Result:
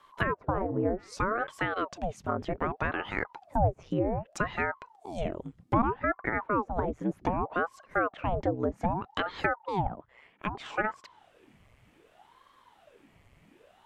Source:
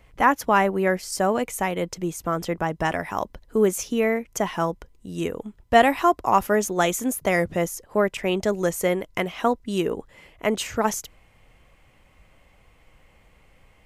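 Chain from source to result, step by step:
0:00.58–0:01.47: hum removal 99.44 Hz, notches 21
treble cut that deepens with the level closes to 510 Hz, closed at −17.5 dBFS
0:09.87–0:10.55: three-way crossover with the lows and the highs turned down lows −14 dB, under 540 Hz, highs −15 dB, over 2,900 Hz
ring modulator whose carrier an LFO sweeps 580 Hz, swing 90%, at 0.64 Hz
level −2 dB

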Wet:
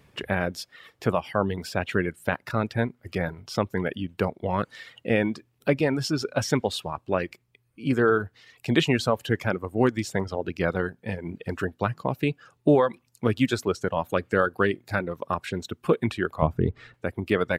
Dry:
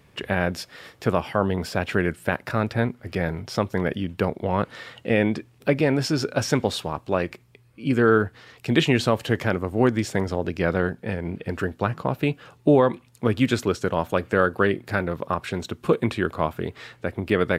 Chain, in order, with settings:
reverb reduction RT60 1.1 s
0:16.42–0:16.94: spectral tilt −4 dB per octave
level −1.5 dB

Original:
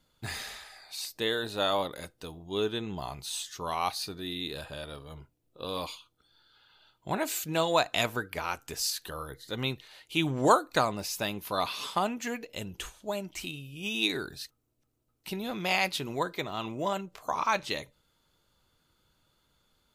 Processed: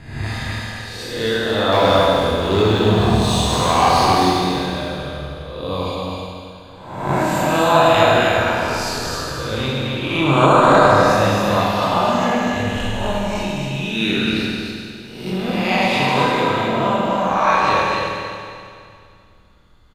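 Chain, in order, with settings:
peak hold with a rise ahead of every peak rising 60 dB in 0.86 s
RIAA equalisation playback
single-tap delay 260 ms −4 dB
0:01.72–0:04.30: leveller curve on the samples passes 2
low-shelf EQ 360 Hz −8.5 dB
convolution reverb RT60 2.3 s, pre-delay 21 ms, DRR −4 dB
boost into a limiter +6.5 dB
level −1 dB

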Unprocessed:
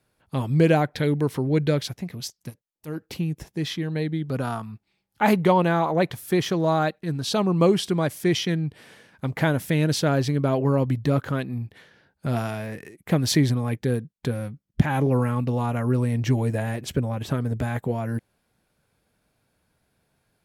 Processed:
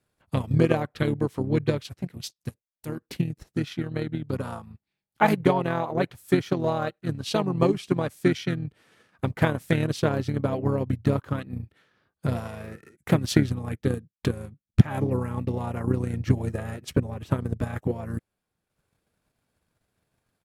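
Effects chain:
pitch-shifted copies added −5 semitones −5 dB
transient designer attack +9 dB, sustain −6 dB
level −7 dB

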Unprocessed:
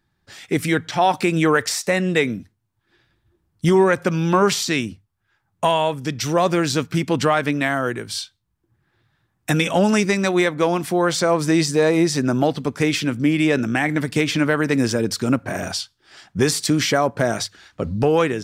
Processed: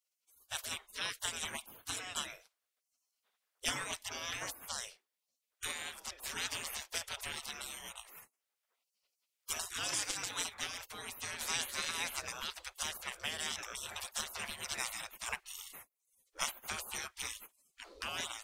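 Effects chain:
gate on every frequency bin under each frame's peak −30 dB weak

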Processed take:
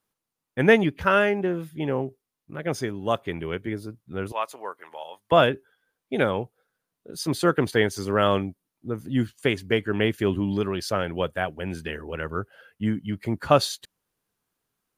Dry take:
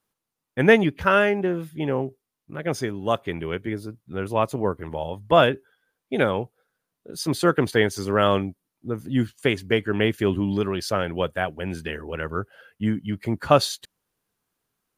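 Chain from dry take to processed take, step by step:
0:04.32–0:05.32: high-pass filter 890 Hz 12 dB per octave
level −1.5 dB

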